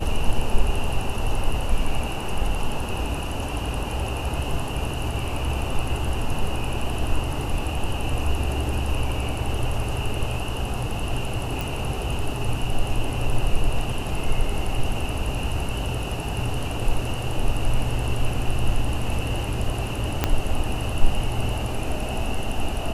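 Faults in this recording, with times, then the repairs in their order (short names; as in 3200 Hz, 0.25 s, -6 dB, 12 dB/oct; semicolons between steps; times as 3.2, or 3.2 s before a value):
11.61 pop
20.24 pop -5 dBFS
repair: de-click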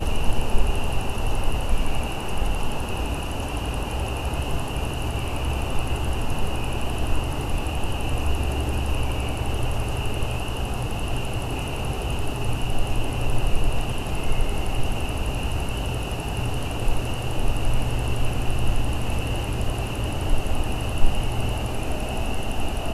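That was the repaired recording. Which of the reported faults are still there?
20.24 pop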